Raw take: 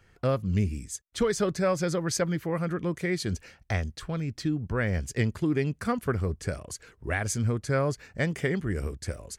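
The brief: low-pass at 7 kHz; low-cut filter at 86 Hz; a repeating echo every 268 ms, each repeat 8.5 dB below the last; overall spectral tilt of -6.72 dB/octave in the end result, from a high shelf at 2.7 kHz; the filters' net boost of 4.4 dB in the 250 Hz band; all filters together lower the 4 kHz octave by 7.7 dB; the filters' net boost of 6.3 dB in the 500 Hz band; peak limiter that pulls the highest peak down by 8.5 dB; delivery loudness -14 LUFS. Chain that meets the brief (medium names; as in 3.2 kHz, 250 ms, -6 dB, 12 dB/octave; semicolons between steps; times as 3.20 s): high-pass 86 Hz; low-pass 7 kHz; peaking EQ 250 Hz +4.5 dB; peaking EQ 500 Hz +6.5 dB; treble shelf 2.7 kHz -6 dB; peaking EQ 4 kHz -4 dB; peak limiter -18 dBFS; feedback delay 268 ms, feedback 38%, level -8.5 dB; trim +14.5 dB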